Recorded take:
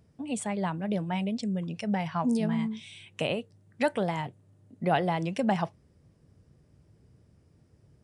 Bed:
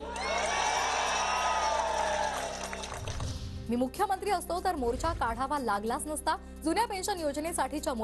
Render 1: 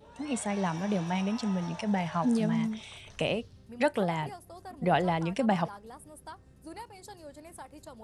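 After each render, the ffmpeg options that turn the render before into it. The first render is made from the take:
-filter_complex "[1:a]volume=-15.5dB[a];[0:a][a]amix=inputs=2:normalize=0"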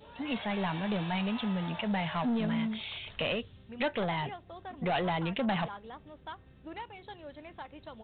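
-af "crystalizer=i=5:c=0,aresample=8000,asoftclip=type=tanh:threshold=-25.5dB,aresample=44100"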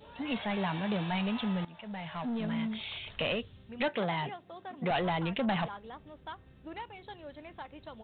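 -filter_complex "[0:a]asettb=1/sr,asplit=3[a][b][c];[a]atrim=end=0.574[d];[b]atrim=start=0.57:end=1.11,asetpts=PTS-STARTPTS,afade=t=in:d=0.004:c=qsin,afade=t=out:st=0.536:d=0.004:c=qsin,highpass=43[e];[c]atrim=start=1.106[f];[d][e]acrossfade=d=0.004:c1=hsin:c2=qsin[g];[g][f]acrossfade=d=0.004:c1=qsin:c2=hsin,asettb=1/sr,asplit=3[h][i][j];[h]atrim=end=3.884[k];[i]atrim=start=3.88:end=4.91,asetpts=PTS-STARTPTS,afade=t=in:d=0.004:c=qsin,afade=t=out:st=1.026:d=0.004:c=qsin,highpass=f=130:w=0.5412,highpass=f=130:w=1.3066[l];[j]atrim=start=4.906[m];[k][l]acrossfade=d=0.004:c1=hsin:c2=qsin[n];[n][m]acrossfade=d=0.004:c1=qsin:c2=hsin,asplit=2[o][p];[o]atrim=end=1.65,asetpts=PTS-STARTPTS,afade=t=out:st=1.646:d=0.004:c=hsin:silence=0.125893[q];[p]atrim=start=1.65,asetpts=PTS-STARTPTS,afade=t=in:d=1.23:silence=0.125893[r];[q][r]concat=n=2:v=0:a=1"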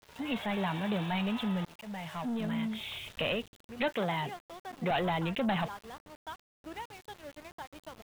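-af "aeval=exprs='val(0)*gte(abs(val(0)),0.00447)':c=same"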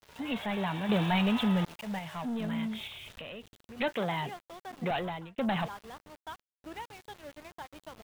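-filter_complex "[0:a]asettb=1/sr,asplit=3[a][b][c];[a]atrim=end=0.894[d];[b]atrim=start=0.89:end=1.99,asetpts=PTS-STARTPTS,afade=t=in:d=0.004:c=qsin,afade=t=out:st=1.096:d=0.004:c=qsin,acontrast=27[e];[c]atrim=start=1.986[f];[d][e]acrossfade=d=0.004:c1=hsin:c2=qsin[g];[g][f]acrossfade=d=0.004:c1=qsin:c2=hsin,asettb=1/sr,asplit=3[h][i][j];[h]atrim=end=2.874[k];[i]atrim=start=2.87:end=3.78,asetpts=PTS-STARTPTS,afade=t=in:d=0.004:c=qsin,afade=t=out:st=0.906:d=0.004:c=qsin,acompressor=threshold=-42dB:ratio=4:attack=3.2:release=140:knee=1:detection=peak[l];[j]atrim=start=3.776[m];[k][l]acrossfade=d=0.004:c1=hsin:c2=qsin[n];[n][m]acrossfade=d=0.004:c1=qsin:c2=hsin,asplit=2[o][p];[o]atrim=end=5.38,asetpts=PTS-STARTPTS,afade=t=out:st=4.84:d=0.54[q];[p]atrim=start=5.38,asetpts=PTS-STARTPTS,afade=t=in:d=0.004:c=hsin[r];[q][r]concat=n=2:v=0:a=1"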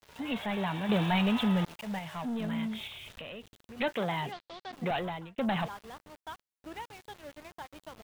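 -filter_complex "[0:a]asettb=1/sr,asplit=3[a][b][c];[a]atrim=end=4.324[d];[b]atrim=start=4.32:end=4.73,asetpts=PTS-STARTPTS,afade=t=in:d=0.004:c=qsin,afade=t=out:st=0.406:d=0.004:c=qsin,lowpass=f=4.3k:t=q:w=3.2[e];[c]atrim=start=4.726[f];[d][e]acrossfade=d=0.004:c1=hsin:c2=qsin[g];[g][f]acrossfade=d=0.004:c1=qsin:c2=hsin"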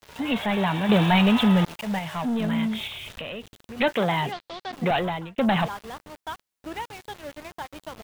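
-af "volume=8.5dB"

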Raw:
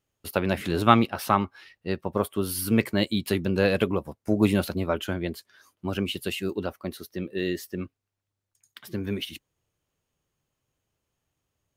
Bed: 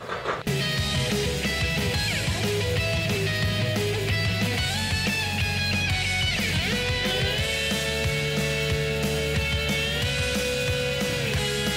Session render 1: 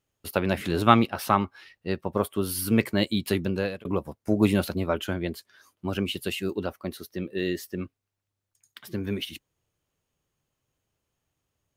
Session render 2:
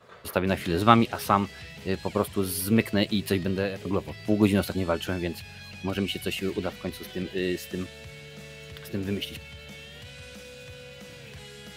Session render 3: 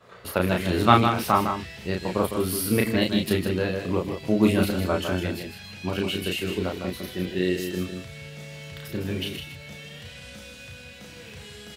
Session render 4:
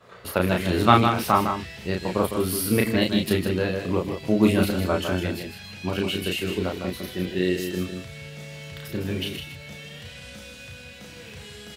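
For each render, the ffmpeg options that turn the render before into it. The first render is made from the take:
-filter_complex "[0:a]asplit=2[a][b];[a]atrim=end=3.85,asetpts=PTS-STARTPTS,afade=t=out:st=3.42:d=0.43[c];[b]atrim=start=3.85,asetpts=PTS-STARTPTS,afade=t=in:d=0.004:c=hsin[d];[c][d]concat=n=2:v=0:a=1"
-filter_complex "[1:a]volume=-18.5dB[a];[0:a][a]amix=inputs=2:normalize=0"
-filter_complex "[0:a]asplit=2[a][b];[b]adelay=33,volume=-3dB[c];[a][c]amix=inputs=2:normalize=0,aecho=1:1:156:0.447"
-af "volume=1dB,alimiter=limit=-1dB:level=0:latency=1"

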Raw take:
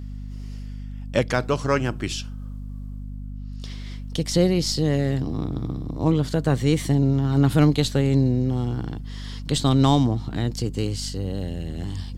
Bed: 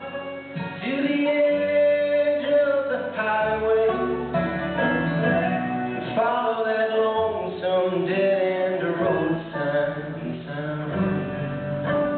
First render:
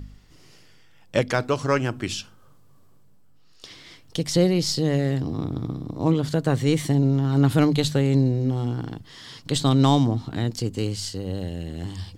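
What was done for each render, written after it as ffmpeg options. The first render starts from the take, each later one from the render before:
-af "bandreject=f=50:t=h:w=4,bandreject=f=100:t=h:w=4,bandreject=f=150:t=h:w=4,bandreject=f=200:t=h:w=4,bandreject=f=250:t=h:w=4"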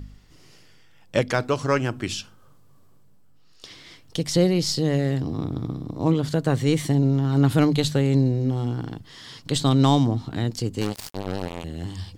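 -filter_complex "[0:a]asettb=1/sr,asplit=3[a][b][c];[a]atrim=end=10.814[d];[b]atrim=start=10.81:end=11.64,asetpts=PTS-STARTPTS,afade=t=in:d=0.004:c=qsin,afade=t=out:st=0.826:d=0.004:c=qsin,acrusher=bits=3:mix=0:aa=0.5[e];[c]atrim=start=11.636[f];[d][e]acrossfade=d=0.004:c1=hsin:c2=qsin[g];[g][f]acrossfade=d=0.004:c1=qsin:c2=hsin"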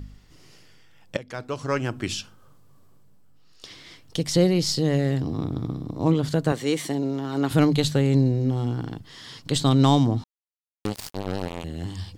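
-filter_complex "[0:a]asettb=1/sr,asplit=3[a][b][c];[a]atrim=end=6.524[d];[b]atrim=start=6.52:end=7.51,asetpts=PTS-STARTPTS,afade=t=in:d=0.004:c=qsin,afade=t=out:st=0.986:d=0.004:c=qsin,highpass=290[e];[c]atrim=start=7.506[f];[d][e]acrossfade=d=0.004:c1=hsin:c2=qsin[g];[g][f]acrossfade=d=0.004:c1=qsin:c2=hsin,asplit=4[h][i][j][k];[h]atrim=end=1.17,asetpts=PTS-STARTPTS,afade=t=out:st=1.166:d=0.004:c=hsin:silence=0.0794328[l];[i]atrim=start=1.17:end=10.24,asetpts=PTS-STARTPTS,afade=t=in:d=0.9:silence=0.0794328,afade=t=out:st=9.066:d=0.004:c=hsin[m];[j]atrim=start=10.24:end=10.85,asetpts=PTS-STARTPTS,volume=0[n];[k]atrim=start=10.85,asetpts=PTS-STARTPTS,afade=t=in:d=0.004:c=hsin[o];[l][m][n][o]concat=n=4:v=0:a=1"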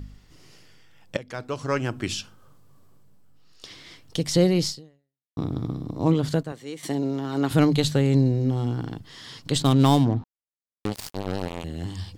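-filter_complex "[0:a]asettb=1/sr,asplit=3[a][b][c];[a]atrim=end=9.624[d];[b]atrim=start=9.62:end=10.92,asetpts=PTS-STARTPTS,afade=t=in:d=0.004:c=qsin,afade=t=out:st=1.296:d=0.004:c=qsin,adynamicsmooth=sensitivity=6:basefreq=810[e];[c]atrim=start=10.916[f];[d][e]acrossfade=d=0.004:c1=hsin:c2=qsin[g];[g][f]acrossfade=d=0.004:c1=qsin:c2=hsin,asplit=4[h][i][j][k];[h]atrim=end=5.37,asetpts=PTS-STARTPTS,afade=t=out:st=4.66:d=0.71:c=exp[l];[i]atrim=start=5.37:end=6.43,asetpts=PTS-STARTPTS,afade=t=in:d=0.004:c=hsin,afade=t=out:st=0.93:d=0.13:c=log:silence=0.251189[m];[j]atrim=start=6.43:end=6.83,asetpts=PTS-STARTPTS,volume=-12dB[n];[k]atrim=start=6.83,asetpts=PTS-STARTPTS,afade=t=in:d=0.13:c=log:silence=0.251189[o];[l][m][n][o]concat=n=4:v=0:a=1"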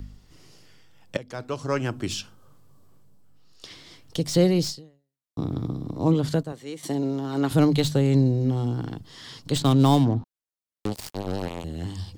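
-filter_complex "[0:a]acrossover=split=240|1500|2700[a][b][c][d];[c]tremolo=f=2.7:d=0.93[e];[d]asoftclip=type=hard:threshold=-26.5dB[f];[a][b][e][f]amix=inputs=4:normalize=0"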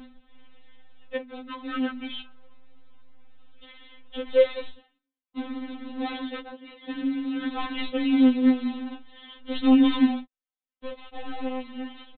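-af "aresample=8000,acrusher=bits=3:mode=log:mix=0:aa=0.000001,aresample=44100,afftfilt=real='re*3.46*eq(mod(b,12),0)':imag='im*3.46*eq(mod(b,12),0)':win_size=2048:overlap=0.75"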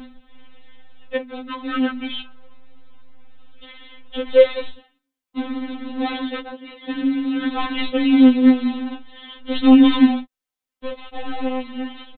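-af "volume=7dB"

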